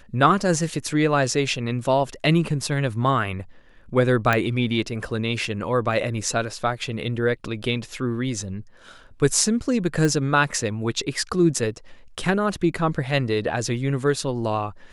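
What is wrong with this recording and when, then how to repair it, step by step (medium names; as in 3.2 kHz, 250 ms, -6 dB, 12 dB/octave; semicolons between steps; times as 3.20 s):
4.33 s: pop -7 dBFS
10.05 s: pop -11 dBFS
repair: de-click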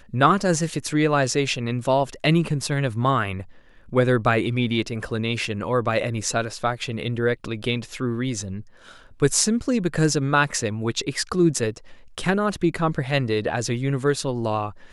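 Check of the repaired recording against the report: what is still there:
nothing left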